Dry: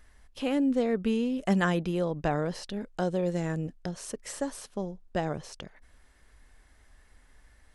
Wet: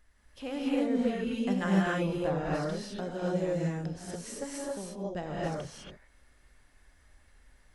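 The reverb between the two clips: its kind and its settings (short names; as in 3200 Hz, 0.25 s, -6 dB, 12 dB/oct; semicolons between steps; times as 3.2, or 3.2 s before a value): non-linear reverb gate 0.31 s rising, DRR -6 dB; gain -8.5 dB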